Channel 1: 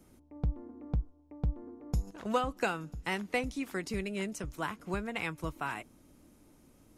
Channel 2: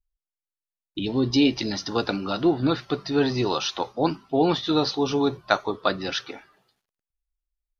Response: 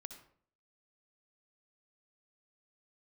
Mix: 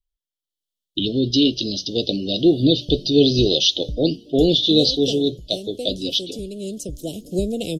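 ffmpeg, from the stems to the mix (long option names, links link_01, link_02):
-filter_complex "[0:a]equalizer=frequency=94:width=0.61:gain=-5.5,adelay=2450,volume=3dB[link_01];[1:a]equalizer=frequency=3000:width=1.8:gain=12,dynaudnorm=framelen=200:gausssize=5:maxgain=12dB,volume=-2dB[link_02];[link_01][link_02]amix=inputs=2:normalize=0,dynaudnorm=framelen=180:gausssize=9:maxgain=15dB,asuperstop=centerf=1400:order=12:qfactor=0.54"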